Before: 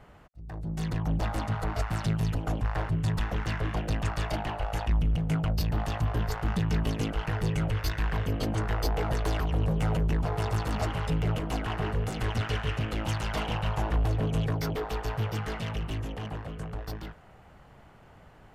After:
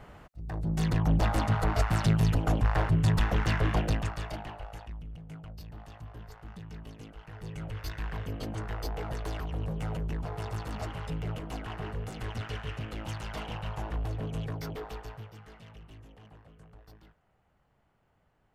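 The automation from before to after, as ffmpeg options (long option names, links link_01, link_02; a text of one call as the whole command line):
ffmpeg -i in.wav -af "volume=13.5dB,afade=type=out:start_time=3.8:duration=0.31:silence=0.375837,afade=type=out:start_time=4.11:duration=0.85:silence=0.251189,afade=type=in:start_time=7.27:duration=0.68:silence=0.316228,afade=type=out:start_time=14.85:duration=0.45:silence=0.298538" out.wav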